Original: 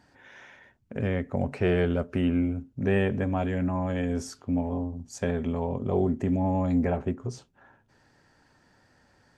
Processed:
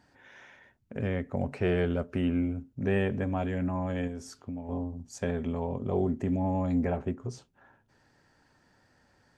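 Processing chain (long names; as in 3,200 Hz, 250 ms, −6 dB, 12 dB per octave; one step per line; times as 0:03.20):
0:04.07–0:04.69: downward compressor 4 to 1, threshold −33 dBFS, peak gain reduction 9 dB
level −3 dB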